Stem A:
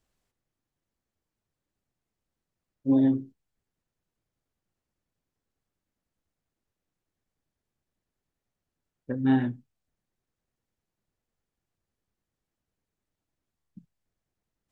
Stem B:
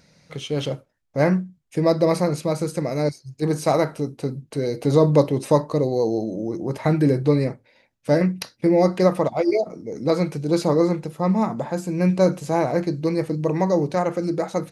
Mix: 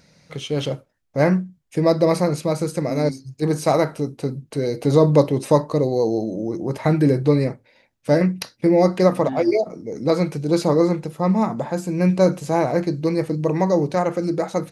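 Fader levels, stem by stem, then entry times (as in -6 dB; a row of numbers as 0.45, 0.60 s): -8.0, +1.5 dB; 0.00, 0.00 s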